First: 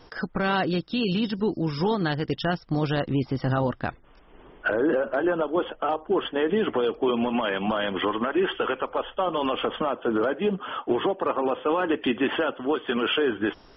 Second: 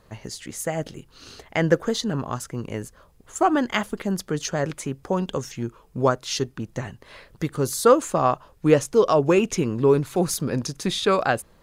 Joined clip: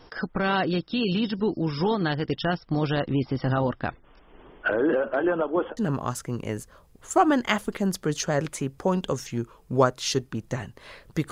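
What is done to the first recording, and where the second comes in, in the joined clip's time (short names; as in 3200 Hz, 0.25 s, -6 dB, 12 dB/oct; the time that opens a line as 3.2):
first
5.19–5.77 LPF 3800 Hz -> 1500 Hz
5.77 switch to second from 2.02 s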